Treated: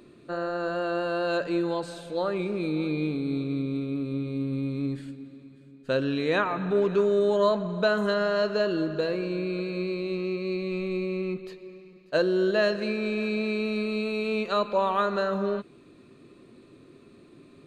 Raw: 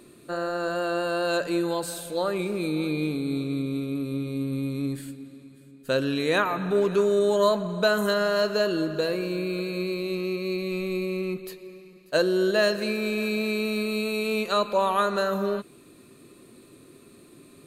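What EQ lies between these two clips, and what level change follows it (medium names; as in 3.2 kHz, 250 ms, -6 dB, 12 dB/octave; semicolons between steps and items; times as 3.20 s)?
tape spacing loss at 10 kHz 30 dB; treble shelf 2.8 kHz +10.5 dB; 0.0 dB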